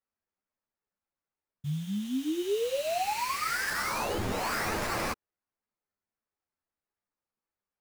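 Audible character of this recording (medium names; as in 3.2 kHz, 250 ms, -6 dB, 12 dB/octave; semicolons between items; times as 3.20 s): aliases and images of a low sample rate 3.4 kHz, jitter 20%; a shimmering, thickened sound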